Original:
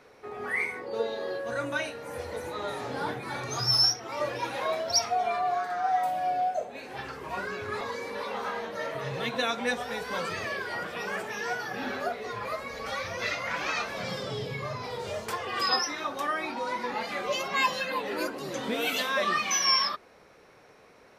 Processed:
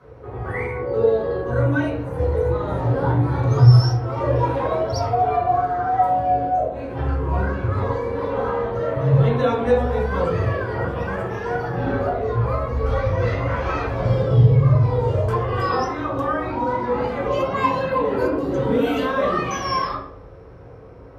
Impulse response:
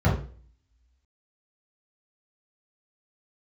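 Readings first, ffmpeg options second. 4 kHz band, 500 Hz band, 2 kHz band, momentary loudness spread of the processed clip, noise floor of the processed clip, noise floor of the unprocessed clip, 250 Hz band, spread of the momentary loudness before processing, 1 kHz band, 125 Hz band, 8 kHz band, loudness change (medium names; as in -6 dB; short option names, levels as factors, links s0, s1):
-8.0 dB, +12.0 dB, +0.5 dB, 8 LU, -41 dBFS, -56 dBFS, +14.0 dB, 10 LU, +7.5 dB, +25.5 dB, no reading, +9.0 dB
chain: -filter_complex "[1:a]atrim=start_sample=2205,asetrate=31311,aresample=44100[s0];[0:a][s0]afir=irnorm=-1:irlink=0,volume=0.376"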